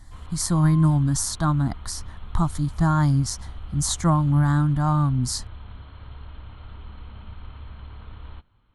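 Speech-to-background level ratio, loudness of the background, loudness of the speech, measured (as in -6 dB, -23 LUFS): 19.5 dB, -41.5 LUFS, -22.0 LUFS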